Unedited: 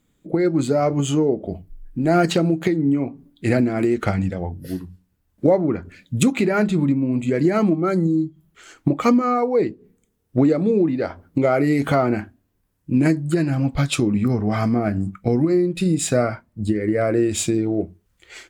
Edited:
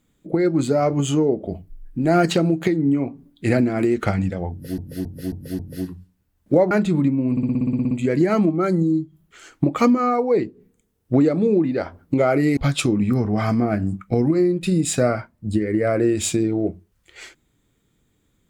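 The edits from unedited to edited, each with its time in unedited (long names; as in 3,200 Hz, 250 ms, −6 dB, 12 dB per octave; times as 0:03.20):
0:04.51–0:04.78: repeat, 5 plays
0:05.63–0:06.55: remove
0:07.15: stutter 0.06 s, 11 plays
0:11.81–0:13.71: remove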